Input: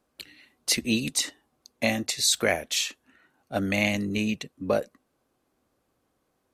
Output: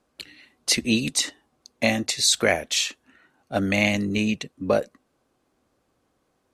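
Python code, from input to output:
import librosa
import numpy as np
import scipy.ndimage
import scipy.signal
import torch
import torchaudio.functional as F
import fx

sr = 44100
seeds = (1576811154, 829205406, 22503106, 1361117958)

y = scipy.signal.sosfilt(scipy.signal.butter(2, 10000.0, 'lowpass', fs=sr, output='sos'), x)
y = F.gain(torch.from_numpy(y), 3.5).numpy()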